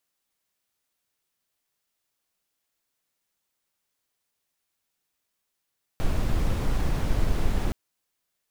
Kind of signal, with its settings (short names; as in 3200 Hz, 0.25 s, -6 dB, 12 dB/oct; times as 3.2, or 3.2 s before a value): noise brown, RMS -22.5 dBFS 1.72 s